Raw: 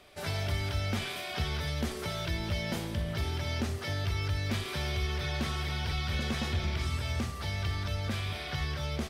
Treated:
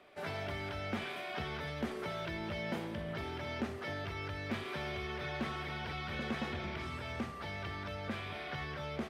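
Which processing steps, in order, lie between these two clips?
three-band isolator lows -15 dB, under 160 Hz, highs -14 dB, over 2.8 kHz; trim -1.5 dB

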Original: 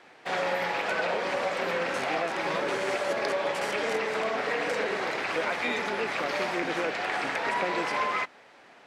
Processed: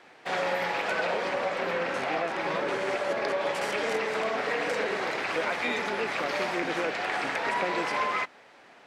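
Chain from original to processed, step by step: 1.29–3.41 s: treble shelf 5.1 kHz -7.5 dB

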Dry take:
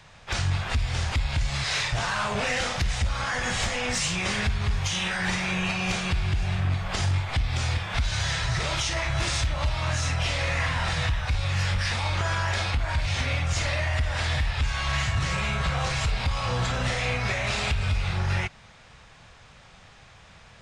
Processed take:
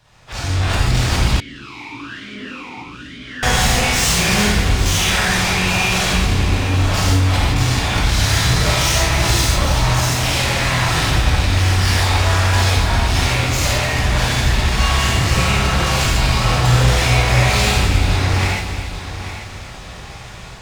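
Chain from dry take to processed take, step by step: peaking EQ 2 kHz -4.5 dB 1.6 oct; waveshaping leveller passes 2; level rider gain up to 15 dB; hard clipper -10 dBFS, distortion -13 dB; multi-head delay 278 ms, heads first and third, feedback 41%, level -12 dB; gated-style reverb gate 190 ms flat, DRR -5.5 dB; 1.40–3.43 s: talking filter i-u 1.1 Hz; trim -10.5 dB

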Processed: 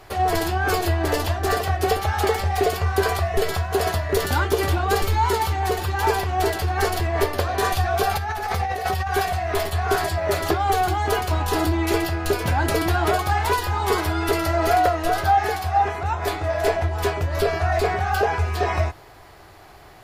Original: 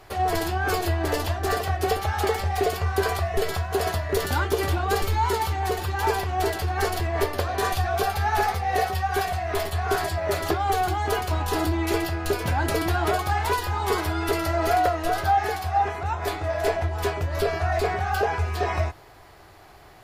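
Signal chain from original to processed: 8.11–9.07 s: compressor with a negative ratio -28 dBFS, ratio -1; trim +3 dB

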